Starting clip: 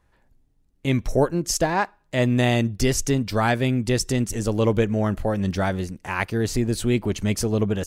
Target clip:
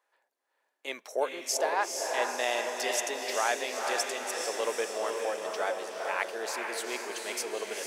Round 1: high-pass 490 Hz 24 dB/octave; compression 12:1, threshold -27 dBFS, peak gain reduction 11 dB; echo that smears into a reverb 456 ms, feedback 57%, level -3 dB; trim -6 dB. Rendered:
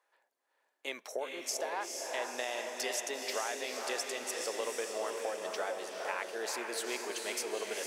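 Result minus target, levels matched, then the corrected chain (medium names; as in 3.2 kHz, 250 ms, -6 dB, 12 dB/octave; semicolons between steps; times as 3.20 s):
compression: peak gain reduction +11 dB
high-pass 490 Hz 24 dB/octave; echo that smears into a reverb 456 ms, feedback 57%, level -3 dB; trim -6 dB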